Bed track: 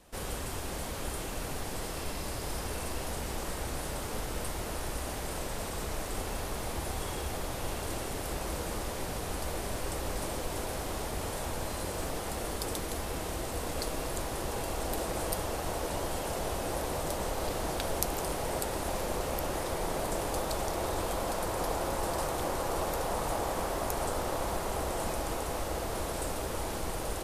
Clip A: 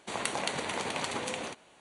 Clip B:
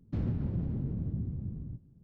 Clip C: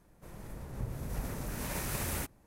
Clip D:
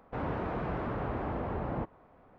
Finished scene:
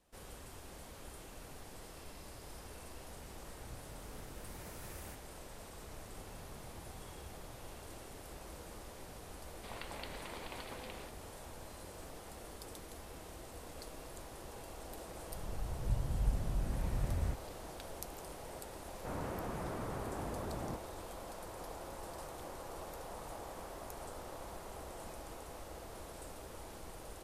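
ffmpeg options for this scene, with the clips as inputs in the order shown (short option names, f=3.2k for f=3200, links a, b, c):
-filter_complex "[3:a]asplit=2[a][b];[0:a]volume=-14.5dB[c];[2:a]acompressor=threshold=-45dB:ratio=6:attack=3.2:release=140:knee=1:detection=peak[d];[1:a]aresample=11025,aresample=44100[e];[b]aemphasis=mode=reproduction:type=riaa[f];[a]atrim=end=2.46,asetpts=PTS-STARTPTS,volume=-16dB,afade=t=in:d=0.004:c=hsin,afade=t=out:st=2.456:d=0.004:c=hsin,adelay=2900[g];[d]atrim=end=2.03,asetpts=PTS-STARTPTS,volume=-11.5dB,afade=t=in:d=0.004:c=hsin,afade=t=out:st=2.026:d=0.004:c=hsin,adelay=5800[h];[e]atrim=end=1.8,asetpts=PTS-STARTPTS,volume=-14dB,afade=t=in:d=0.004:c=hsin,afade=t=out:st=1.796:d=0.004:c=hsin,adelay=9560[i];[f]atrim=end=2.46,asetpts=PTS-STARTPTS,volume=-11dB,afade=t=in:d=0.004:c=hsin,afade=t=out:st=2.456:d=0.004:c=hsin,adelay=15090[j];[4:a]atrim=end=2.38,asetpts=PTS-STARTPTS,volume=-7.5dB,afade=t=in:d=0.004:c=hsin,afade=t=out:st=2.376:d=0.004:c=hsin,adelay=834372S[k];[c][g][h][i][j][k]amix=inputs=6:normalize=0"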